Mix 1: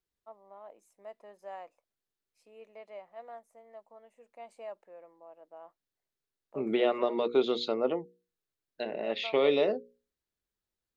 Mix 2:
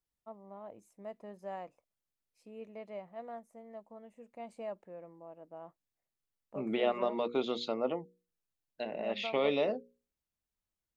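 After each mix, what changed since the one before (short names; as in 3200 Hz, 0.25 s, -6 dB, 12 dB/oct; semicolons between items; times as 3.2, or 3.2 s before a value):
first voice: remove HPF 500 Hz 12 dB/oct; second voice: add fifteen-band EQ 400 Hz -8 dB, 1600 Hz -5 dB, 4000 Hz -5 dB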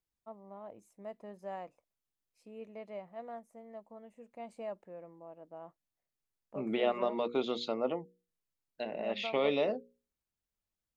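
none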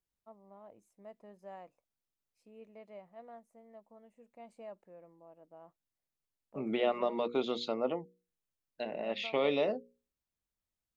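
first voice -6.5 dB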